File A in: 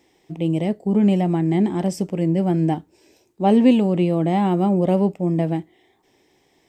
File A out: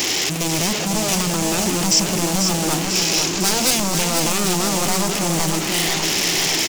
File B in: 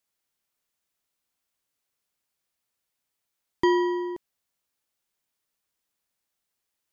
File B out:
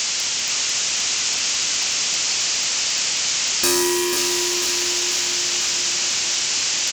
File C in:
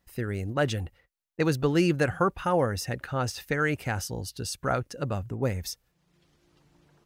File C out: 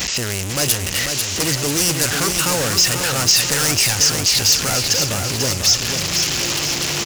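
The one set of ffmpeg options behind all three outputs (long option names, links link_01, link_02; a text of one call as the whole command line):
ffmpeg -i in.wav -af "aeval=exprs='val(0)+0.5*0.0841*sgn(val(0))':channel_layout=same,highpass=frequency=85:poles=1,equalizer=frequency=2900:width_type=o:width=1.1:gain=12,aresample=16000,acrusher=bits=5:mode=log:mix=0:aa=0.000001,aresample=44100,aeval=exprs='0.141*(abs(mod(val(0)/0.141+3,4)-2)-1)':channel_layout=same,aexciter=amount=6:drive=0.9:freq=4700,aecho=1:1:493|986|1479|1972|2465|2958|3451:0.501|0.266|0.141|0.0746|0.0395|0.021|0.0111" out.wav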